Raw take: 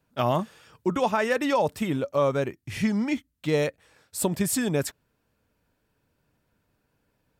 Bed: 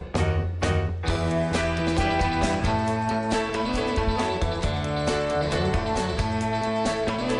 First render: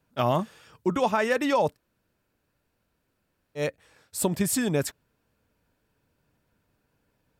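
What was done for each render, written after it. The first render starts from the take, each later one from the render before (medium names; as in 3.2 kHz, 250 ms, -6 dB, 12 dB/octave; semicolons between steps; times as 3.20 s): 1.72–3.60 s: room tone, crossfade 0.10 s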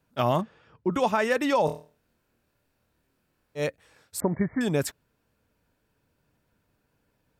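0.41–0.93 s: tape spacing loss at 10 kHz 30 dB; 1.65–3.60 s: flutter echo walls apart 4.4 m, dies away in 0.35 s; 4.20–4.61 s: brick-wall FIR low-pass 2.3 kHz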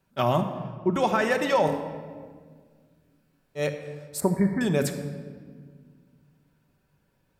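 simulated room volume 2300 m³, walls mixed, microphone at 1.1 m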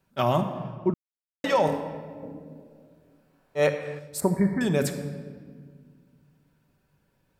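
0.94–1.44 s: mute; 2.22–3.98 s: peaking EQ 220 Hz -> 1.4 kHz +9.5 dB 2.3 oct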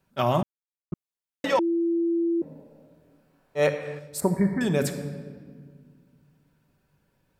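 0.43–0.92 s: mute; 1.59–2.42 s: bleep 337 Hz -21 dBFS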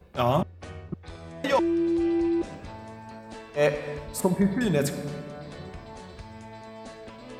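add bed -17.5 dB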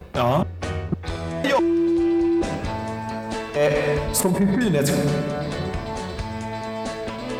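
in parallel at +0.5 dB: compressor with a negative ratio -31 dBFS, ratio -0.5; on the sum: waveshaping leveller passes 1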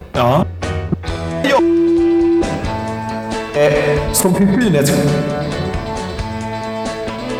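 trim +7 dB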